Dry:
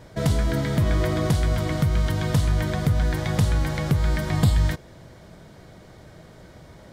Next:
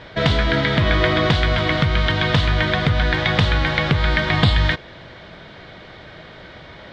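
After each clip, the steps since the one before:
drawn EQ curve 150 Hz 0 dB, 940 Hz +7 dB, 1,700 Hz +12 dB, 3,600 Hz +14 dB, 12,000 Hz −28 dB
level +2 dB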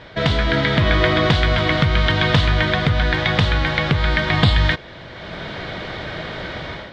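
automatic gain control gain up to 12 dB
level −1 dB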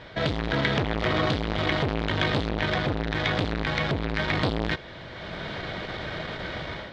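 saturating transformer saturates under 1,200 Hz
level −3.5 dB

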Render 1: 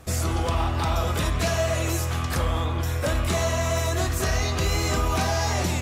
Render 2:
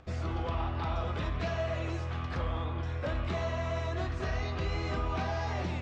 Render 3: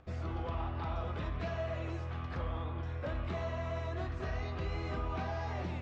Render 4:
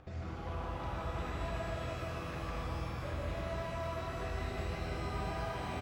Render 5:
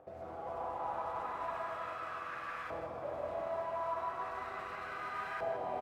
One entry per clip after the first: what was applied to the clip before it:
Bessel low-pass filter 3,000 Hz, order 4; upward compression, threshold −47 dBFS; level −8.5 dB
high-shelf EQ 3,700 Hz −7.5 dB; level −4 dB
brickwall limiter −38.5 dBFS, peak gain reduction 11.5 dB; single-tap delay 151 ms −3 dB; reverb with rising layers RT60 4 s, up +12 semitones, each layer −8 dB, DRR −2 dB; level +2 dB
noise that follows the level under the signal 16 dB; auto-filter band-pass saw up 0.37 Hz 590–1,600 Hz; single-tap delay 159 ms −9 dB; level +7 dB

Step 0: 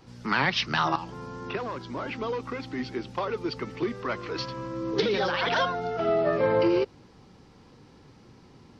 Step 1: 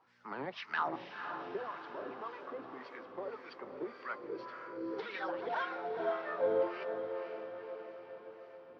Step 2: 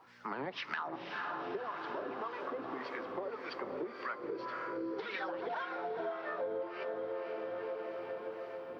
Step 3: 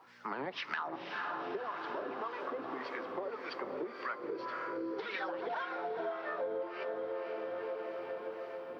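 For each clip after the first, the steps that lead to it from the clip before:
LFO wah 1.8 Hz 390–1,900 Hz, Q 2.1; feedback delay with all-pass diffusion 500 ms, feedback 59%, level −7 dB; level −5.5 dB
on a send at −20 dB: convolution reverb RT60 1.6 s, pre-delay 3 ms; on the sum: downward compressor 6 to 1, threshold −46 dBFS, peak gain reduction 17.5 dB; level +9.5 dB
low-shelf EQ 110 Hz −9.5 dB; level +1 dB

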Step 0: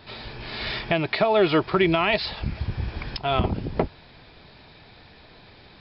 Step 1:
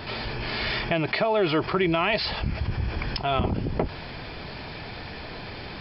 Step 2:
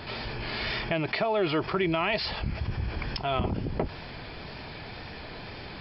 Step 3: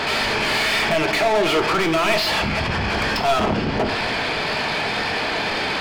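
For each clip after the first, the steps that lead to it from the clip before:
notch filter 3,800 Hz, Q 7.7; envelope flattener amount 50%; level −4.5 dB
tape wow and flutter 26 cents; level −3.5 dB
mid-hump overdrive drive 31 dB, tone 3,800 Hz, clips at −13 dBFS; on a send at −6 dB: convolution reverb RT60 0.90 s, pre-delay 4 ms

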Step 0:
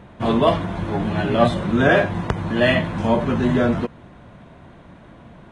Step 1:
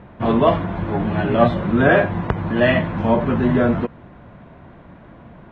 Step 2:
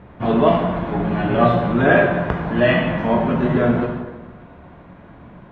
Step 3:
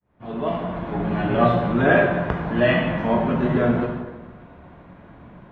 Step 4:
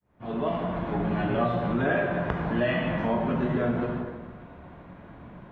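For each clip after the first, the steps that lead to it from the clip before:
low-pass filter 2,500 Hz 12 dB per octave; level +1.5 dB
dense smooth reverb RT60 1.3 s, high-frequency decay 0.8×, DRR 0.5 dB; level −2 dB
fade in at the beginning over 1.15 s; level −2.5 dB
downward compressor 3 to 1, threshold −23 dBFS, peak gain reduction 9 dB; level −1 dB

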